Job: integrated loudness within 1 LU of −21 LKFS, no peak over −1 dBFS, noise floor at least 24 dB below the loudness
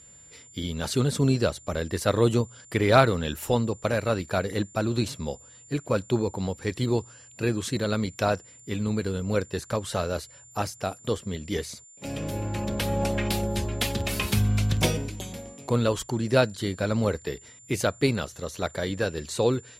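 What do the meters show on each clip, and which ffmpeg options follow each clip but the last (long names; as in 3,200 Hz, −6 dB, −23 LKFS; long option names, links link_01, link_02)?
interfering tone 7,200 Hz; level of the tone −49 dBFS; integrated loudness −27.0 LKFS; sample peak −3.5 dBFS; target loudness −21.0 LKFS
→ -af "bandreject=frequency=7200:width=30"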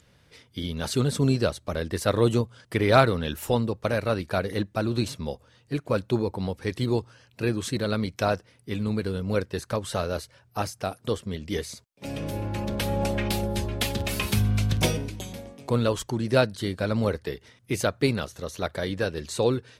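interfering tone none found; integrated loudness −27.5 LKFS; sample peak −3.5 dBFS; target loudness −21.0 LKFS
→ -af "volume=6.5dB,alimiter=limit=-1dB:level=0:latency=1"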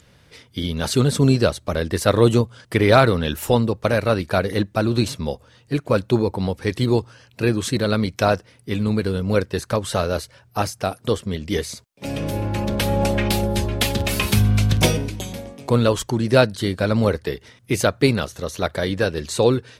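integrated loudness −21.0 LKFS; sample peak −1.0 dBFS; background noise floor −55 dBFS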